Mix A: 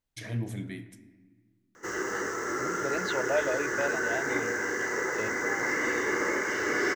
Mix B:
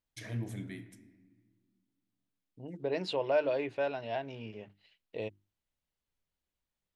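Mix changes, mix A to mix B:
first voice -4.5 dB; background: muted

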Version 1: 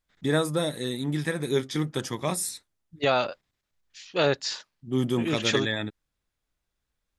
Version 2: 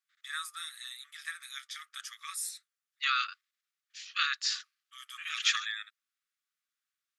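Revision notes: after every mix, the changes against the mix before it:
first voice -6.0 dB; master: add brick-wall FIR high-pass 1.1 kHz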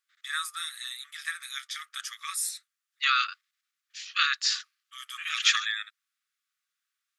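first voice +6.0 dB; second voice +5.0 dB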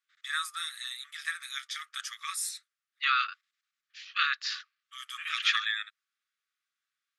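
second voice: add distance through air 170 m; master: add treble shelf 10 kHz -8 dB

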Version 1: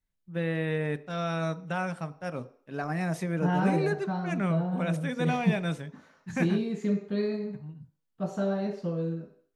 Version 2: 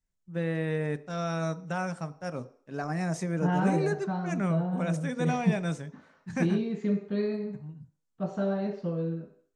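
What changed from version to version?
first voice: add resonant high shelf 4.9 kHz +13 dB, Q 1.5; master: add distance through air 110 m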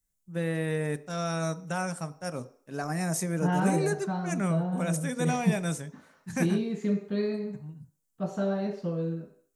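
master: remove distance through air 110 m

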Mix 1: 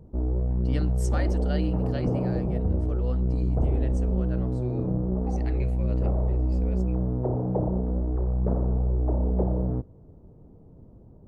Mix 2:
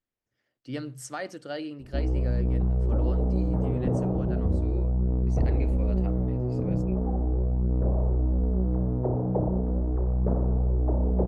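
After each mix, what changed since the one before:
background: entry +1.80 s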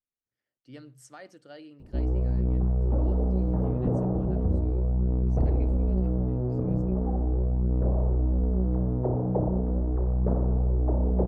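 speech -11.5 dB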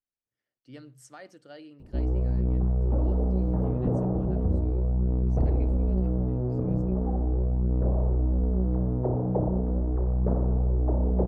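no change

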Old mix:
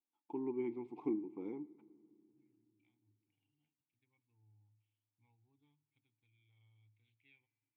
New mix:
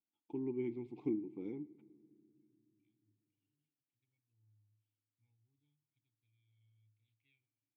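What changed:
second voice -10.5 dB; master: add graphic EQ 125/1000/4000 Hz +9/-11/+6 dB

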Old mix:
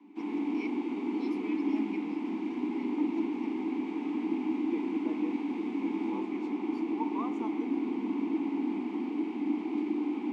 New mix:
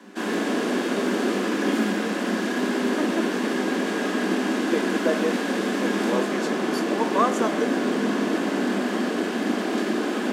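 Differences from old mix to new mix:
first voice: muted; master: remove vowel filter u

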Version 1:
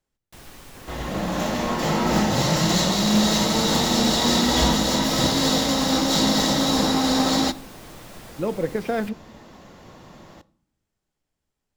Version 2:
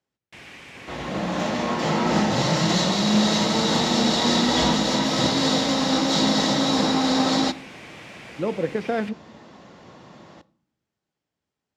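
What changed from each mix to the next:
first sound: add FFT filter 1.3 kHz 0 dB, 2.3 kHz +12 dB, 4 kHz 0 dB; master: add band-pass 110–6000 Hz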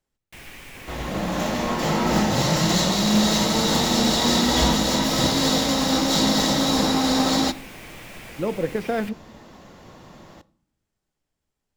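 master: remove band-pass 110–6000 Hz

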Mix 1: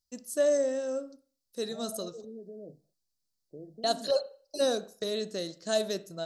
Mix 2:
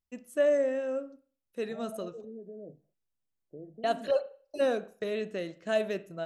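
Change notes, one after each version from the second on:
master: add resonant high shelf 3.4 kHz -11 dB, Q 3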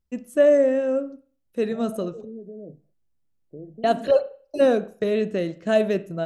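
first voice +5.0 dB; master: add bass shelf 460 Hz +9.5 dB

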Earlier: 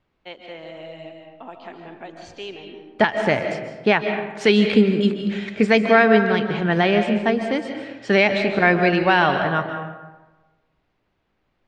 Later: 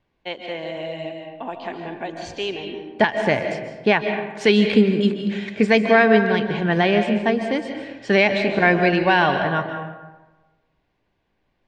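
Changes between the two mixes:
first voice +7.5 dB; master: add Butterworth band-stop 1.3 kHz, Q 7.7

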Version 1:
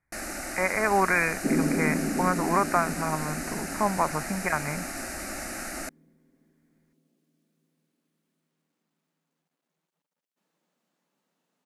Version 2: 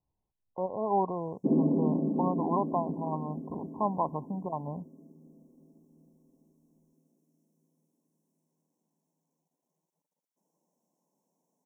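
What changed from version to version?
speech -3.5 dB; first sound: muted; master: add brick-wall FIR band-stop 1.1–5.3 kHz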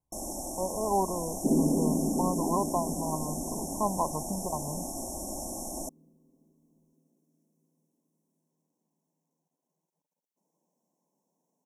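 first sound: unmuted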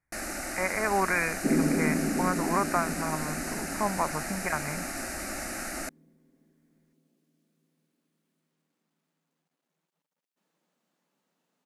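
master: remove brick-wall FIR band-stop 1.1–5.3 kHz

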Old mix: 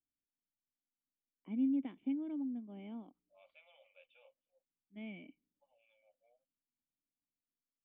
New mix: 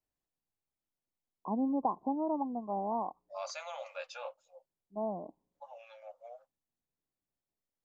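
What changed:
first voice: add rippled Chebyshev low-pass 1.1 kHz, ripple 3 dB; master: remove cascade formant filter i

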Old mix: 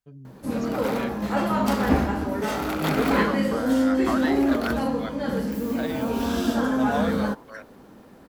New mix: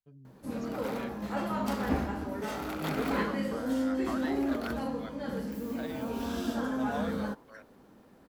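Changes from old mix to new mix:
first voice -9.5 dB; second voice -10.5 dB; background -9.0 dB

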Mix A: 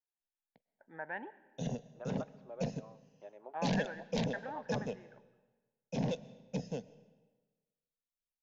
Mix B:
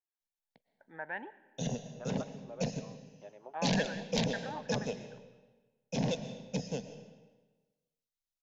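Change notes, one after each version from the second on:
background: send +10.5 dB; master: add treble shelf 2.8 kHz +8.5 dB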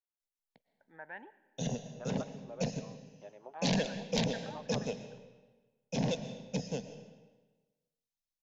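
first voice -6.5 dB

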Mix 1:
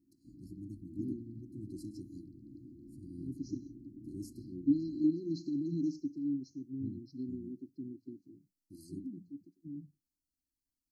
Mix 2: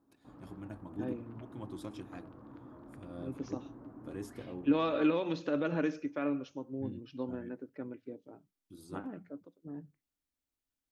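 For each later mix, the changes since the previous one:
master: remove brick-wall FIR band-stop 380–4000 Hz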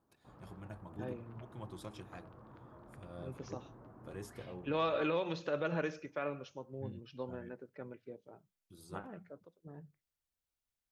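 master: add peaking EQ 280 Hz -14.5 dB 0.43 oct

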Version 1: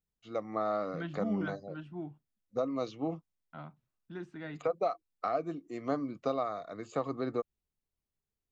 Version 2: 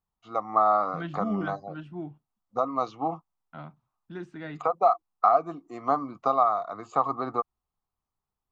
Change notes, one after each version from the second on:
first voice: add high-order bell 960 Hz +15.5 dB 1.1 oct; second voice +4.0 dB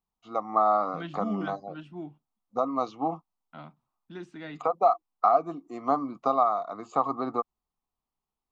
second voice: add tilt shelf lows -4 dB, about 1.1 kHz; master: add fifteen-band graphic EQ 100 Hz -8 dB, 250 Hz +4 dB, 1.6 kHz -5 dB

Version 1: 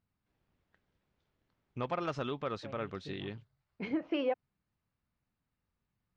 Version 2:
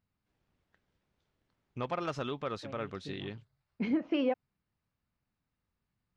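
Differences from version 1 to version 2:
second voice: add peaking EQ 230 Hz +13 dB 0.43 oct; master: remove distance through air 61 m

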